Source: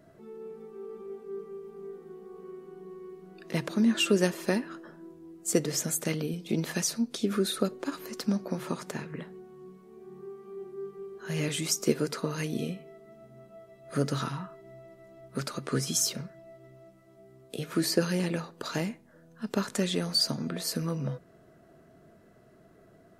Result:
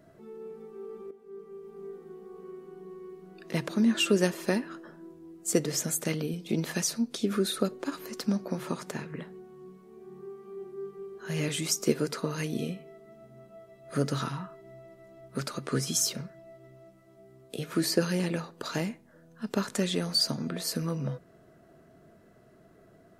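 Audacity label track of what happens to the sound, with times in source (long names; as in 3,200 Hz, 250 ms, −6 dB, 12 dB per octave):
1.110000	1.820000	fade in, from −12.5 dB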